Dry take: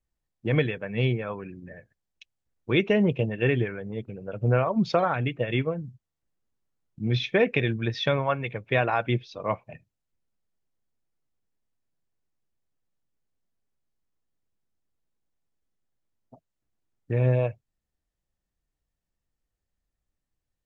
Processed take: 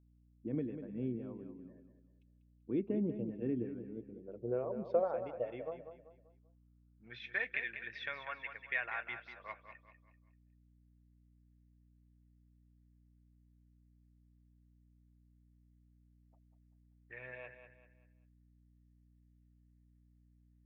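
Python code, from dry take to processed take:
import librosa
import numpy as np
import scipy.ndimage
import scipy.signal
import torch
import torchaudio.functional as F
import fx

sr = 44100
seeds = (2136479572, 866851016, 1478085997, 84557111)

p1 = fx.filter_sweep_bandpass(x, sr, from_hz=270.0, to_hz=1900.0, start_s=3.82, end_s=7.5, q=3.5)
p2 = p1 + fx.echo_feedback(p1, sr, ms=194, feedback_pct=37, wet_db=-9.5, dry=0)
p3 = fx.add_hum(p2, sr, base_hz=60, snr_db=23)
y = F.gain(torch.from_numpy(p3), -4.5).numpy()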